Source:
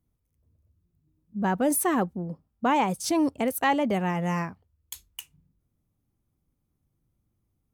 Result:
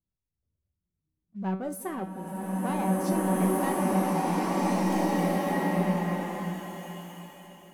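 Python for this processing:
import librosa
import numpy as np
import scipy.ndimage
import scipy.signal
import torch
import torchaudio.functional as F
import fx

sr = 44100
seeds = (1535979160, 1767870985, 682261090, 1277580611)

y = fx.high_shelf(x, sr, hz=2500.0, db=-8.0)
y = fx.leveller(y, sr, passes=1)
y = fx.comb_fb(y, sr, f0_hz=190.0, decay_s=0.41, harmonics='all', damping=0.0, mix_pct=80)
y = fx.echo_split(y, sr, split_hz=510.0, low_ms=192, high_ms=546, feedback_pct=52, wet_db=-15.0)
y = fx.rev_bloom(y, sr, seeds[0], attack_ms=1920, drr_db=-8.5)
y = F.gain(torch.from_numpy(y), -1.0).numpy()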